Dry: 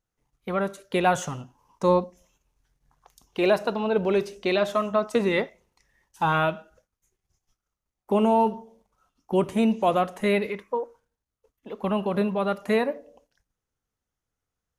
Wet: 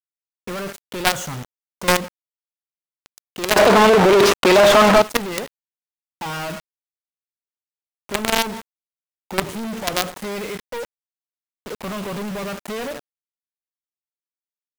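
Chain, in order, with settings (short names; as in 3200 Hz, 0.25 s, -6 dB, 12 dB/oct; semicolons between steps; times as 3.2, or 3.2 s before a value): companded quantiser 2-bit; 3.56–5.02 overdrive pedal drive 36 dB, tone 2500 Hz, clips at 0 dBFS; gain -2 dB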